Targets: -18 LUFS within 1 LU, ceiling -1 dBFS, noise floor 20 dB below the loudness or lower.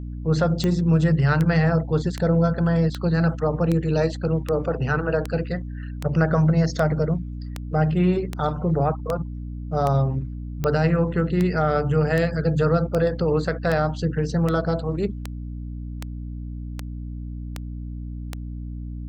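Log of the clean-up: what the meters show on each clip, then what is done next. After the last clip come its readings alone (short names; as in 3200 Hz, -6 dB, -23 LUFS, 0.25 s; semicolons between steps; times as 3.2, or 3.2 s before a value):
clicks 24; hum 60 Hz; harmonics up to 300 Hz; hum level -29 dBFS; loudness -22.5 LUFS; peak -7.5 dBFS; loudness target -18.0 LUFS
-> de-click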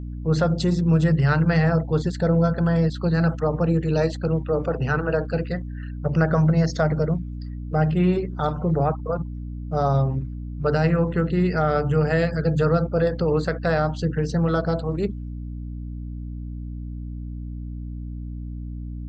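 clicks 0; hum 60 Hz; harmonics up to 300 Hz; hum level -29 dBFS
-> de-hum 60 Hz, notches 5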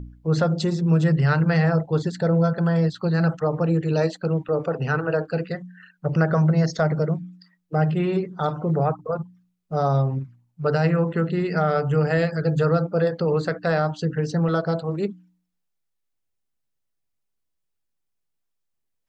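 hum none; loudness -23.0 LUFS; peak -8.5 dBFS; loudness target -18.0 LUFS
-> gain +5 dB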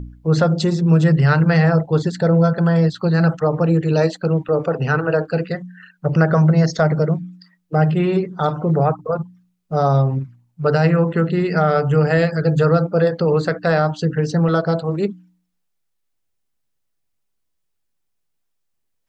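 loudness -18.0 LUFS; peak -3.5 dBFS; noise floor -71 dBFS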